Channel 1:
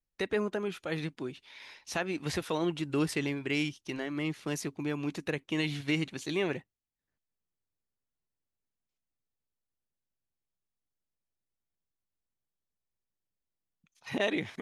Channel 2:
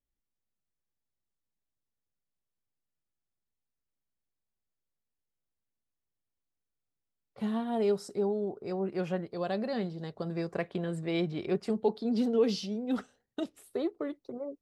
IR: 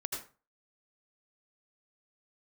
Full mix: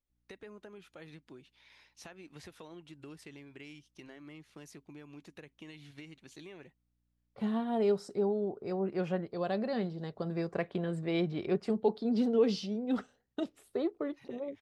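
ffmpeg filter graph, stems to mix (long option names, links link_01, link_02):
-filter_complex "[0:a]acompressor=threshold=-36dB:ratio=4,aeval=exprs='val(0)+0.000447*(sin(2*PI*60*n/s)+sin(2*PI*2*60*n/s)/2+sin(2*PI*3*60*n/s)/3+sin(2*PI*4*60*n/s)/4+sin(2*PI*5*60*n/s)/5)':channel_layout=same,adelay=100,volume=-11.5dB[link_01];[1:a]highshelf=frequency=8200:gain=-11.5,volume=-0.5dB,asplit=2[link_02][link_03];[link_03]apad=whole_len=648816[link_04];[link_01][link_04]sidechaincompress=threshold=-41dB:ratio=8:attack=12:release=744[link_05];[link_05][link_02]amix=inputs=2:normalize=0"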